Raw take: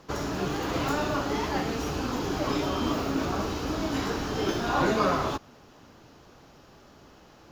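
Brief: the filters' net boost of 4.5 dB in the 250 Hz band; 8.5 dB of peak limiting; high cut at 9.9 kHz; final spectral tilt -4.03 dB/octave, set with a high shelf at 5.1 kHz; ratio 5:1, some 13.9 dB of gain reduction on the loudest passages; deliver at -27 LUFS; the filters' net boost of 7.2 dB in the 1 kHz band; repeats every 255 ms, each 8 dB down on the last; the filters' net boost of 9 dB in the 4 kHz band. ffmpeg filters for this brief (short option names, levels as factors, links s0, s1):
-af "lowpass=9900,equalizer=f=250:t=o:g=5,equalizer=f=1000:t=o:g=8,equalizer=f=4000:t=o:g=8,highshelf=f=5100:g=7,acompressor=threshold=0.0282:ratio=5,alimiter=level_in=1.33:limit=0.0631:level=0:latency=1,volume=0.75,aecho=1:1:255|510|765|1020|1275:0.398|0.159|0.0637|0.0255|0.0102,volume=2.51"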